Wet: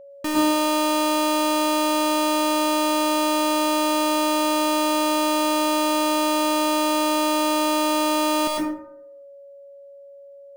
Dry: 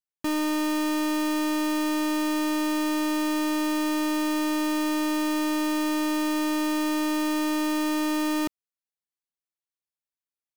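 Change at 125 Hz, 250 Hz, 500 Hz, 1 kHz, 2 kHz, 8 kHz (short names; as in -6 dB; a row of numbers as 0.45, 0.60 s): n/a, +1.0 dB, +10.0 dB, +10.0 dB, +3.5 dB, +8.0 dB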